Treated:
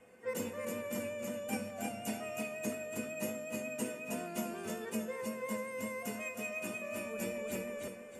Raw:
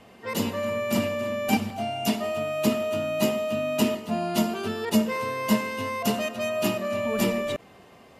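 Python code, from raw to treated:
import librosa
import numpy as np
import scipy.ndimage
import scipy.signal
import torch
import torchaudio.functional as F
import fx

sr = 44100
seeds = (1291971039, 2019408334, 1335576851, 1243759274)

p1 = fx.graphic_eq(x, sr, hz=(250, 500, 2000, 4000, 8000), db=(3, 3, 8, -11, 11))
p2 = p1 + fx.echo_feedback(p1, sr, ms=317, feedback_pct=31, wet_db=-3.0, dry=0)
p3 = fx.vibrato(p2, sr, rate_hz=5.5, depth_cents=27.0)
p4 = fx.comb_fb(p3, sr, f0_hz=500.0, decay_s=0.26, harmonics='odd', damping=0.0, mix_pct=90)
y = fx.rider(p4, sr, range_db=5, speed_s=0.5)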